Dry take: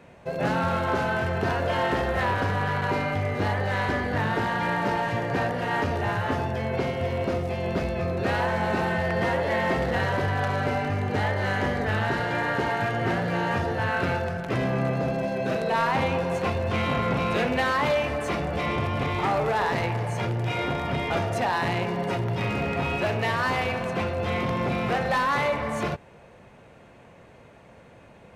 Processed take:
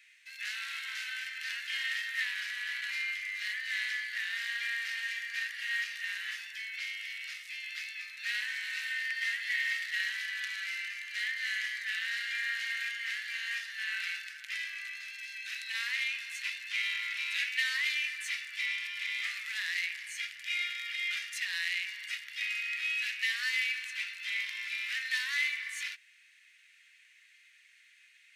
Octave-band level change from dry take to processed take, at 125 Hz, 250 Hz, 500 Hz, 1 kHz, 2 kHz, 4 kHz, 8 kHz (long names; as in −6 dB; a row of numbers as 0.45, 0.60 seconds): below −40 dB, below −40 dB, below −40 dB, −30.0 dB, −2.0 dB, +1.0 dB, +1.0 dB